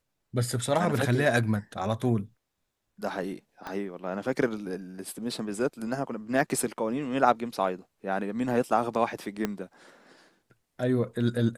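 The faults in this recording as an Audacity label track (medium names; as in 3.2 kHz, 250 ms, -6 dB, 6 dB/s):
3.670000	3.670000	pop -22 dBFS
9.450000	9.450000	pop -14 dBFS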